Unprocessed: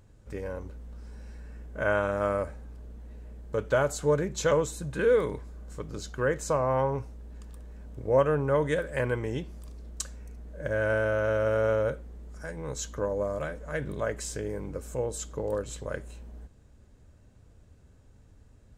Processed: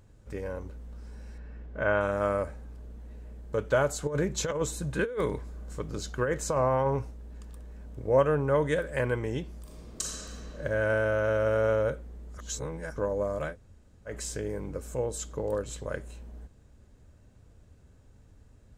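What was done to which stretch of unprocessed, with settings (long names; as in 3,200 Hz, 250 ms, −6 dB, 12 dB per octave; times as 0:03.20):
0:01.38–0:02.01: low-pass filter 3,800 Hz
0:04.07–0:07.11: compressor whose output falls as the input rises −26 dBFS, ratio −0.5
0:09.62–0:10.48: thrown reverb, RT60 2.8 s, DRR −5 dB
0:12.38–0:12.96: reverse
0:13.53–0:14.10: fill with room tone, crossfade 0.10 s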